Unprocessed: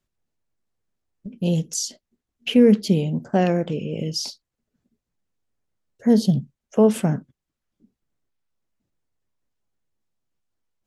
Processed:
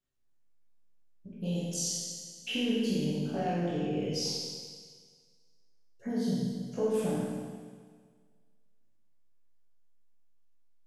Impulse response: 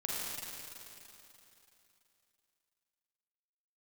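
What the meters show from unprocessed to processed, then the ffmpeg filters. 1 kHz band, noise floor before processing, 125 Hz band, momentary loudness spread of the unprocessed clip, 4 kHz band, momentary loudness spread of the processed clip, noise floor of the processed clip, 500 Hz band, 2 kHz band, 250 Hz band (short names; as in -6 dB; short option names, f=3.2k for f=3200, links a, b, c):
-8.5 dB, -84 dBFS, -11.5 dB, 12 LU, -5.0 dB, 14 LU, -64 dBFS, -11.5 dB, -7.5 dB, -12.0 dB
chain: -filter_complex "[0:a]acompressor=threshold=-21dB:ratio=6,flanger=delay=15.5:depth=2.4:speed=1.3[a];[1:a]atrim=start_sample=2205,asetrate=79380,aresample=44100[b];[a][b]afir=irnorm=-1:irlink=0"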